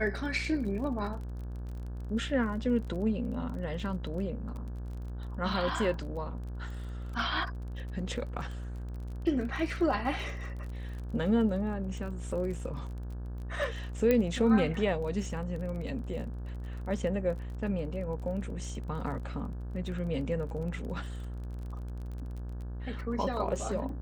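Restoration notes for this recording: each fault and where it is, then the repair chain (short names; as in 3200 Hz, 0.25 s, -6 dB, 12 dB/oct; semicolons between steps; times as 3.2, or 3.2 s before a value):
buzz 60 Hz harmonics 29 -38 dBFS
crackle 27/s -40 dBFS
14.11 pop -14 dBFS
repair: de-click; de-hum 60 Hz, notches 29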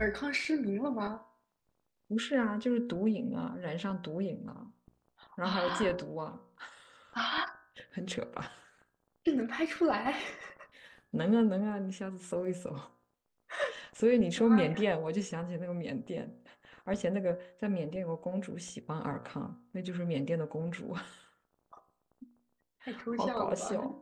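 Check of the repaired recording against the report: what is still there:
none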